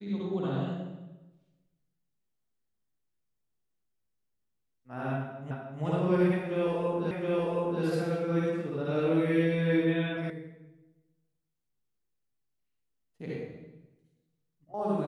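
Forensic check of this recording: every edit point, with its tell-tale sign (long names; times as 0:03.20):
0:05.51: the same again, the last 0.31 s
0:07.11: the same again, the last 0.72 s
0:10.30: cut off before it has died away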